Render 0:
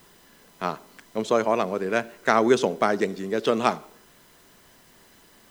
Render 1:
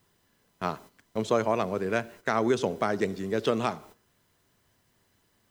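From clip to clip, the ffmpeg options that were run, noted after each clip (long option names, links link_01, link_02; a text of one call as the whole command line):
ffmpeg -i in.wav -af "agate=range=-12dB:threshold=-44dB:ratio=16:detection=peak,equalizer=frequency=96:width_type=o:width=0.87:gain=12.5,alimiter=limit=-10dB:level=0:latency=1:release=257,volume=-3dB" out.wav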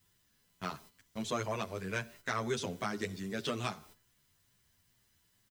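ffmpeg -i in.wav -filter_complex "[0:a]equalizer=frequency=500:width=0.37:gain=-12.5,asplit=2[link_01][link_02];[link_02]adelay=9.7,afreqshift=2.3[link_03];[link_01][link_03]amix=inputs=2:normalize=1,volume=3dB" out.wav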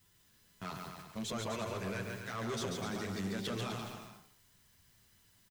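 ffmpeg -i in.wav -filter_complex "[0:a]alimiter=level_in=5.5dB:limit=-24dB:level=0:latency=1:release=72,volume=-5.5dB,asoftclip=type=tanh:threshold=-37.5dB,asplit=2[link_01][link_02];[link_02]aecho=0:1:140|252|341.6|413.3|470.6:0.631|0.398|0.251|0.158|0.1[link_03];[link_01][link_03]amix=inputs=2:normalize=0,volume=3dB" out.wav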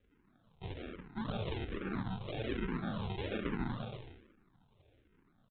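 ffmpeg -i in.wav -filter_complex "[0:a]crystalizer=i=5:c=0,aresample=8000,acrusher=samples=11:mix=1:aa=0.000001:lfo=1:lforange=6.6:lforate=2,aresample=44100,asplit=2[link_01][link_02];[link_02]afreqshift=-1.2[link_03];[link_01][link_03]amix=inputs=2:normalize=1,volume=2dB" out.wav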